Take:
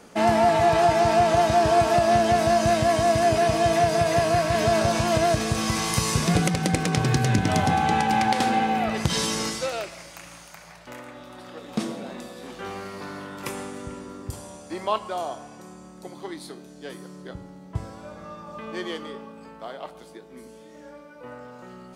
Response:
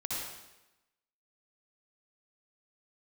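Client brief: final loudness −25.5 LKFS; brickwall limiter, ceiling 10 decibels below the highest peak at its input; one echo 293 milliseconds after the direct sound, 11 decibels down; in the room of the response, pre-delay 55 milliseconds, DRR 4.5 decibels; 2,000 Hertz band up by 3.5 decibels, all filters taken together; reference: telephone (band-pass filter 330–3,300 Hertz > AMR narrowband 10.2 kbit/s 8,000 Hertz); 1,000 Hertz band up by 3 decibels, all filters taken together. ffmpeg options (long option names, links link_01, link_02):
-filter_complex "[0:a]equalizer=frequency=1000:width_type=o:gain=4.5,equalizer=frequency=2000:width_type=o:gain=3.5,alimiter=limit=-13.5dB:level=0:latency=1,aecho=1:1:293:0.282,asplit=2[link_01][link_02];[1:a]atrim=start_sample=2205,adelay=55[link_03];[link_02][link_03]afir=irnorm=-1:irlink=0,volume=-8.5dB[link_04];[link_01][link_04]amix=inputs=2:normalize=0,highpass=330,lowpass=3300,volume=-2dB" -ar 8000 -c:a libopencore_amrnb -b:a 10200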